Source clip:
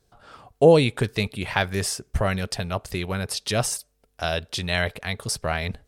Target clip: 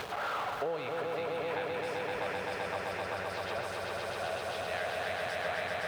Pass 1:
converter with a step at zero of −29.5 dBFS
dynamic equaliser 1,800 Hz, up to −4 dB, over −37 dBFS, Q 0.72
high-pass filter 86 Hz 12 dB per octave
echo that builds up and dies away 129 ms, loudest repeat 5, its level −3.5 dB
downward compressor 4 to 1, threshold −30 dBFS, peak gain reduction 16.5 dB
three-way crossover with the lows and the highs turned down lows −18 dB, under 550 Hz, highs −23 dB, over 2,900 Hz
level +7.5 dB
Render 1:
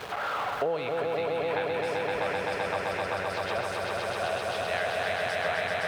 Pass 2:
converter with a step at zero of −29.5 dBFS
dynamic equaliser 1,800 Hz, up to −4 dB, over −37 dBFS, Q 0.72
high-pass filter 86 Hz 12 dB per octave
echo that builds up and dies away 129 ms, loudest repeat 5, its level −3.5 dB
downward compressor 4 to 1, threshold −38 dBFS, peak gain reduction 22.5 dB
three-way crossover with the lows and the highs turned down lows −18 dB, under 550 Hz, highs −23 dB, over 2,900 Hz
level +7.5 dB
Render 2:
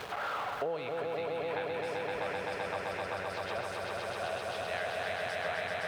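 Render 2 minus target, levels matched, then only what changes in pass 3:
converter with a step at zero: distortion −6 dB
change: converter with a step at zero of −22 dBFS

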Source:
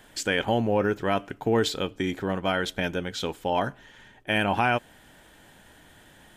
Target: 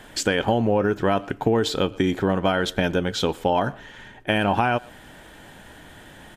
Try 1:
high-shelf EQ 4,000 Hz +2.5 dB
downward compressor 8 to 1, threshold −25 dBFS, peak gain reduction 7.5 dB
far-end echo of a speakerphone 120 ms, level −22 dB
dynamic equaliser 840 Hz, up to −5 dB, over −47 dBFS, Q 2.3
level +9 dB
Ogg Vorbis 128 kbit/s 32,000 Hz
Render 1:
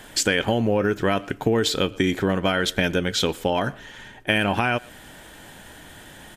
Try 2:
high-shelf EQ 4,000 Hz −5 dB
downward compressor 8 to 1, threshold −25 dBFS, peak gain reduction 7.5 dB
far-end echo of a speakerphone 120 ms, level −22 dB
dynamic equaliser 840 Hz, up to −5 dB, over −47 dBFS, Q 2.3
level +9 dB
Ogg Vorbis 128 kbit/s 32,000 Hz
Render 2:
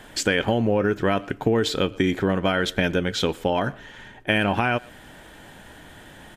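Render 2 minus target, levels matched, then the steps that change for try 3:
1,000 Hz band −2.5 dB
change: dynamic equaliser 2,100 Hz, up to −5 dB, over −47 dBFS, Q 2.3

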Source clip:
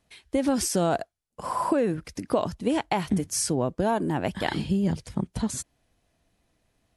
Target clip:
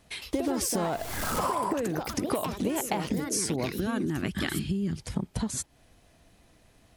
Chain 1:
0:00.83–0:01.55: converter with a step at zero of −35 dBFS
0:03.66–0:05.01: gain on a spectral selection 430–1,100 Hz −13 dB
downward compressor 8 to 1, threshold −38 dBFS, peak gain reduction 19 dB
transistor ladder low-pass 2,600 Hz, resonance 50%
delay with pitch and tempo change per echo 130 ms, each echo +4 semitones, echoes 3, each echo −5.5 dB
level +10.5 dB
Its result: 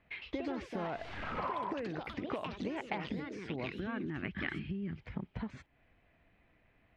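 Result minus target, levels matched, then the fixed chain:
2,000 Hz band +5.0 dB
0:00.83–0:01.55: converter with a step at zero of −35 dBFS
0:03.66–0:05.01: gain on a spectral selection 430–1,100 Hz −13 dB
downward compressor 8 to 1, threshold −38 dBFS, peak gain reduction 19 dB
delay with pitch and tempo change per echo 130 ms, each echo +4 semitones, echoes 3, each echo −5.5 dB
level +10.5 dB

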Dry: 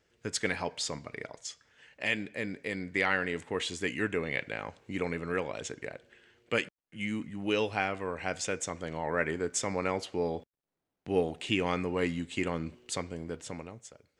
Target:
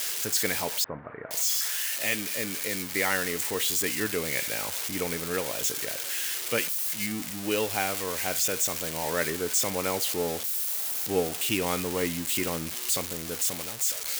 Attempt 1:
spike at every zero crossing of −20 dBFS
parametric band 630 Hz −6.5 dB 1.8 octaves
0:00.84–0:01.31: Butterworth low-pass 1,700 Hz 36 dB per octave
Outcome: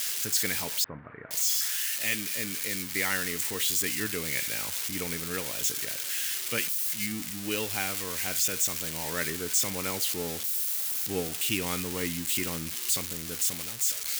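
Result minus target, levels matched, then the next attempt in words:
500 Hz band −6.0 dB
spike at every zero crossing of −20 dBFS
parametric band 630 Hz +2 dB 1.8 octaves
0:00.84–0:01.31: Butterworth low-pass 1,700 Hz 36 dB per octave

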